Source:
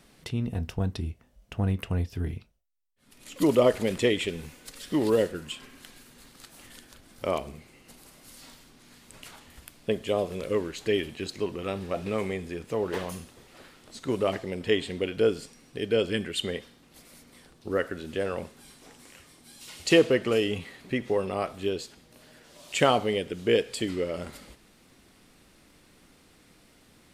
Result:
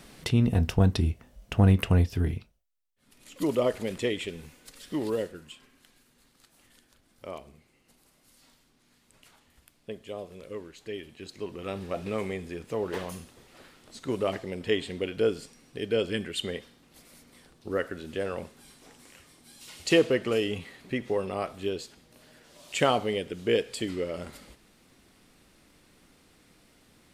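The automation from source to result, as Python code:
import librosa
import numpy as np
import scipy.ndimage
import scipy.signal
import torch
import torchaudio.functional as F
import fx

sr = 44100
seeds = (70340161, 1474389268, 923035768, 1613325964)

y = fx.gain(x, sr, db=fx.line((1.88, 7.0), (3.31, -5.0), (4.98, -5.0), (5.74, -11.5), (11.01, -11.5), (11.78, -2.0)))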